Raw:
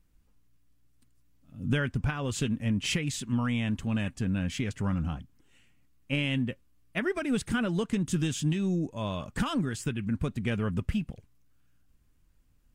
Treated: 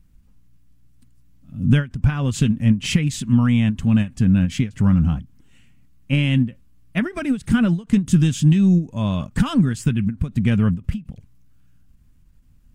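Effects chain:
low shelf with overshoot 280 Hz +7 dB, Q 1.5
every ending faded ahead of time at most 250 dB per second
level +5.5 dB

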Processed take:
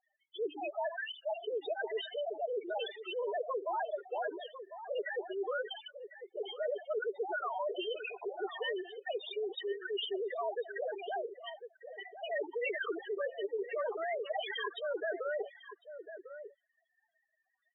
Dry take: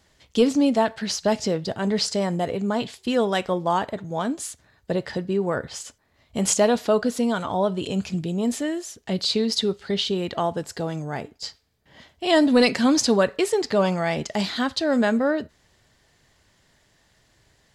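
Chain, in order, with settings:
three sine waves on the formant tracks
Butterworth high-pass 390 Hz 96 dB per octave
noise gate with hold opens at −42 dBFS
notch filter 540 Hz, Q 12
reversed playback
downward compressor 10 to 1, threshold −28 dBFS, peak gain reduction 19 dB
reversed playback
spectral peaks only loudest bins 4
slap from a distant wall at 180 metres, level −22 dB
every bin compressed towards the loudest bin 2 to 1
level −3 dB

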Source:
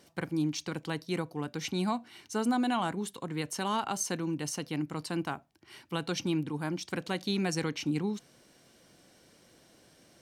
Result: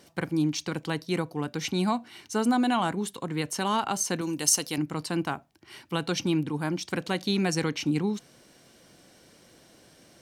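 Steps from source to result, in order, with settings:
0:04.21–0:04.78: bass and treble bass −7 dB, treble +13 dB
level +4.5 dB

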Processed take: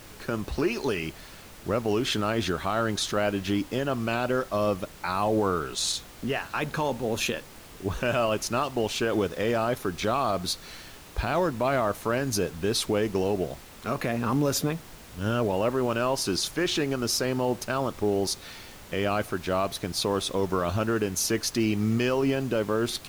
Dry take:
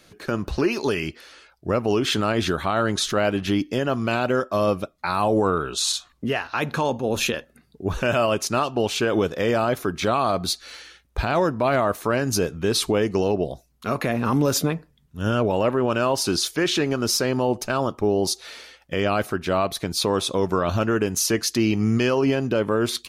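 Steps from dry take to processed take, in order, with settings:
background noise pink −42 dBFS
level −4.5 dB

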